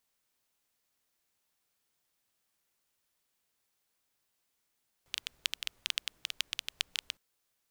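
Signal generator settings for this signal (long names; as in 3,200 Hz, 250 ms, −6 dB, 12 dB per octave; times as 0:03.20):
rain-like ticks over hiss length 2.11 s, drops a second 10, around 3,100 Hz, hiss −29 dB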